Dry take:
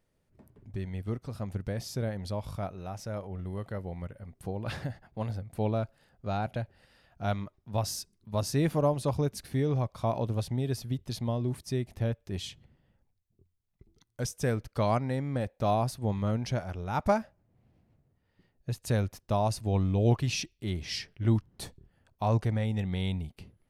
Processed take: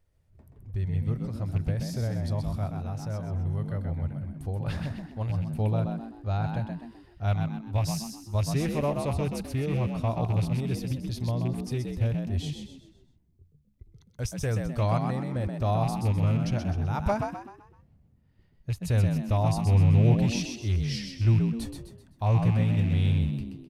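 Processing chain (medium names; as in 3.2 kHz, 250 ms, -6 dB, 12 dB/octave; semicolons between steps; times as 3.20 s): rattle on loud lows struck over -29 dBFS, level -32 dBFS; resonant low shelf 120 Hz +10.5 dB, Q 1.5; frequency-shifting echo 128 ms, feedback 39%, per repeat +59 Hz, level -5.5 dB; trim -2 dB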